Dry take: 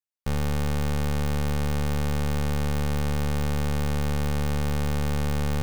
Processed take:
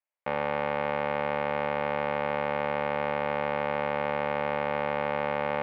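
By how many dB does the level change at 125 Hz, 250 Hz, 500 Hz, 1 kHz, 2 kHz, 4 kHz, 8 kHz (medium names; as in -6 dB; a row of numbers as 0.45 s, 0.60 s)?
-16.5 dB, -8.0 dB, +6.0 dB, +7.0 dB, +4.5 dB, -5.5 dB, under -30 dB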